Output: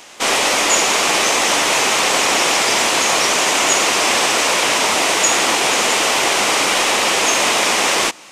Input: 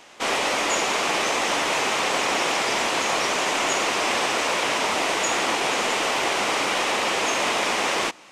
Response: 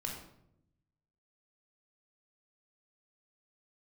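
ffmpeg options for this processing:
-af "highshelf=frequency=4900:gain=10,aeval=exprs='0.473*(cos(1*acos(clip(val(0)/0.473,-1,1)))-cos(1*PI/2))+0.00596*(cos(2*acos(clip(val(0)/0.473,-1,1)))-cos(2*PI/2))':channel_layout=same,volume=5.5dB"

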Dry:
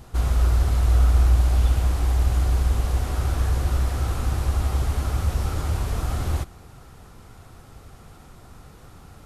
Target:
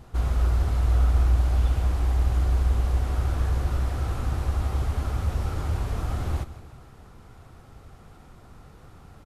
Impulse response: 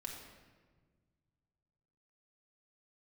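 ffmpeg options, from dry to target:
-filter_complex "[0:a]highshelf=frequency=4200:gain=-7.5,asplit=2[link_01][link_02];[link_02]aecho=0:1:159|318|477|636|795:0.158|0.0856|0.0462|0.025|0.0135[link_03];[link_01][link_03]amix=inputs=2:normalize=0,volume=-2.5dB"

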